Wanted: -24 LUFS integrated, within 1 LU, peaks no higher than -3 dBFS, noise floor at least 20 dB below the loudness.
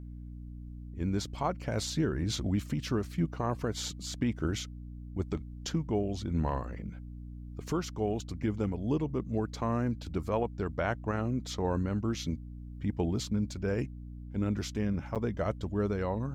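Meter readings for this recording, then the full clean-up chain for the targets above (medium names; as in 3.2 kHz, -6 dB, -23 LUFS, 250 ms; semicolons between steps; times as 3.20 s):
dropouts 1; longest dropout 7.6 ms; hum 60 Hz; highest harmonic 300 Hz; hum level -41 dBFS; loudness -33.5 LUFS; peak level -17.5 dBFS; loudness target -24.0 LUFS
-> interpolate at 15.15 s, 7.6 ms; de-hum 60 Hz, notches 5; trim +9.5 dB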